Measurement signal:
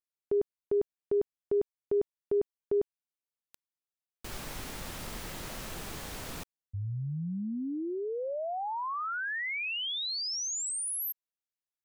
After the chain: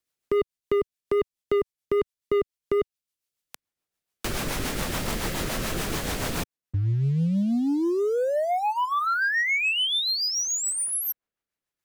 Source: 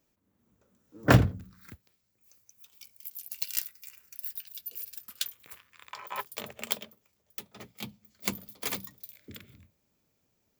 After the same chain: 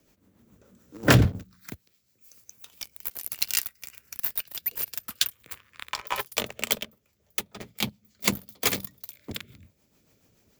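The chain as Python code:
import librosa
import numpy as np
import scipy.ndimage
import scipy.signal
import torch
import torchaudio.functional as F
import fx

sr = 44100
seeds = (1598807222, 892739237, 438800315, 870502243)

y = fx.rotary(x, sr, hz=7.0)
y = fx.leveller(y, sr, passes=2)
y = fx.band_squash(y, sr, depth_pct=40)
y = F.gain(torch.from_numpy(y), 5.5).numpy()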